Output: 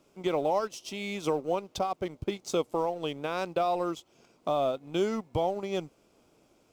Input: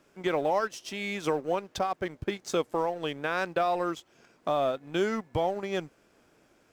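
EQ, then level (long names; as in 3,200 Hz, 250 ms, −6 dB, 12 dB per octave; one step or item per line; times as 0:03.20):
parametric band 1,700 Hz −14 dB 0.48 octaves
0.0 dB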